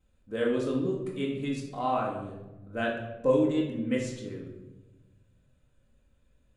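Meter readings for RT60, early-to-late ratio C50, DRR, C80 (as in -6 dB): 1.1 s, 4.0 dB, -11.5 dB, 6.5 dB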